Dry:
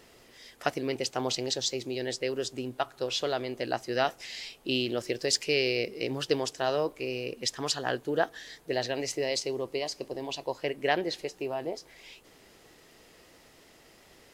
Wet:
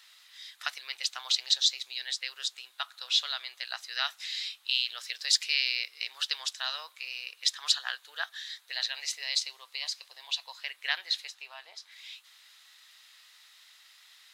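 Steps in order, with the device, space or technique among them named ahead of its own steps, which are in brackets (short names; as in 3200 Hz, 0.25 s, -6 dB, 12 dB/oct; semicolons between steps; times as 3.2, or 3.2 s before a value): 11.34–11.92 high shelf 9200 Hz -10 dB; headphones lying on a table (HPF 1200 Hz 24 dB/oct; bell 3800 Hz +11 dB 0.38 oct)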